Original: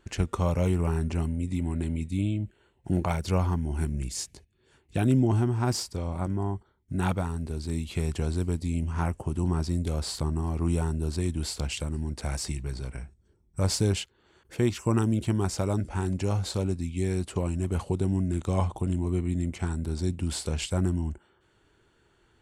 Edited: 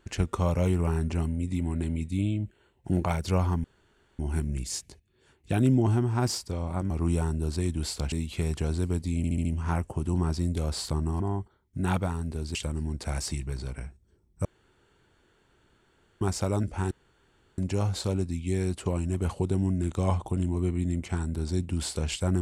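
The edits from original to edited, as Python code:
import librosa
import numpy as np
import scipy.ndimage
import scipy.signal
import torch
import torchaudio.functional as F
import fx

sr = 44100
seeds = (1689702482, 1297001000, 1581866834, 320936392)

y = fx.edit(x, sr, fx.insert_room_tone(at_s=3.64, length_s=0.55),
    fx.swap(start_s=6.35, length_s=1.35, other_s=10.5, other_length_s=1.22),
    fx.stutter(start_s=8.75, slice_s=0.07, count=5),
    fx.room_tone_fill(start_s=13.62, length_s=1.76),
    fx.insert_room_tone(at_s=16.08, length_s=0.67), tone=tone)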